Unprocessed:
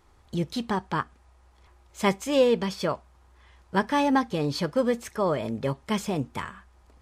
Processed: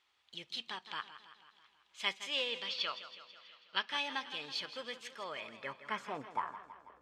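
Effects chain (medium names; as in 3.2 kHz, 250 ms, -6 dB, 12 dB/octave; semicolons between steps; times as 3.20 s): 2.69–3.89 s: cabinet simulation 120–6300 Hz, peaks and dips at 1.3 kHz +8 dB, 2.8 kHz +8 dB, 4.1 kHz +8 dB; band-pass sweep 3.1 kHz -> 500 Hz, 5.21–6.99 s; modulated delay 163 ms, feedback 60%, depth 78 cents, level -13 dB; trim +1 dB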